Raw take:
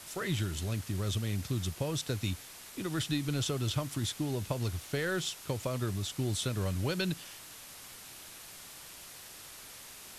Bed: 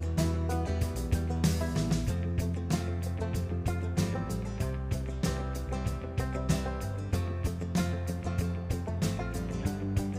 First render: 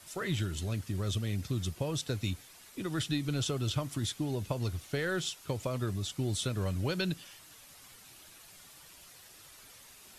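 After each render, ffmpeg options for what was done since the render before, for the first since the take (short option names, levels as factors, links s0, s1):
-af "afftdn=nr=8:nf=-50"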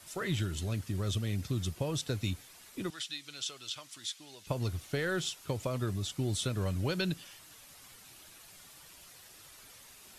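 -filter_complex "[0:a]asettb=1/sr,asplit=3[s0][s1][s2];[s0]atrim=end=2.904[s3];[s1]atrim=start=2.9:end=4.47,asetpts=PTS-STARTPTS,afade=t=in:d=0.004:c=qsin,afade=t=out:st=1.566:d=0.004:c=qsin,bandpass=f=4600:t=q:w=0.69[s4];[s2]atrim=start=4.466[s5];[s3][s4]acrossfade=d=0.004:c1=hsin:c2=qsin[s6];[s6][s5]acrossfade=d=0.004:c1=qsin:c2=hsin"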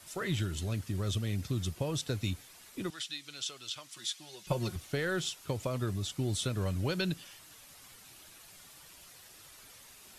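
-filter_complex "[0:a]asettb=1/sr,asplit=3[s0][s1][s2];[s0]atrim=end=3.964[s3];[s1]atrim=start=3.96:end=4.76,asetpts=PTS-STARTPTS,afade=t=in:d=0.004:c=qsin,afade=t=out:st=0.796:d=0.004:c=qsin,aecho=1:1:5.5:0.88,atrim=end_sample=35280[s4];[s2]atrim=start=4.756[s5];[s3][s4]acrossfade=d=0.004:c1=hsin:c2=qsin[s6];[s6][s5]acrossfade=d=0.004:c1=qsin:c2=hsin"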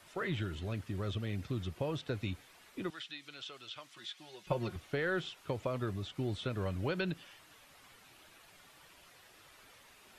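-filter_complex "[0:a]acrossover=split=3700[s0][s1];[s1]acompressor=threshold=0.00158:ratio=4:attack=1:release=60[s2];[s0][s2]amix=inputs=2:normalize=0,bass=f=250:g=-5,treble=f=4000:g=-7"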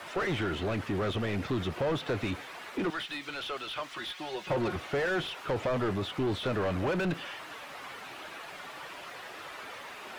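-filter_complex "[0:a]asplit=2[s0][s1];[s1]highpass=f=720:p=1,volume=31.6,asoftclip=type=tanh:threshold=0.0944[s2];[s0][s2]amix=inputs=2:normalize=0,lowpass=f=1100:p=1,volume=0.501,aeval=exprs='val(0)*gte(abs(val(0)),0.00141)':c=same"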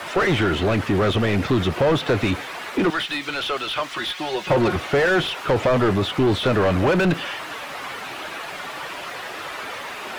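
-af "volume=3.76"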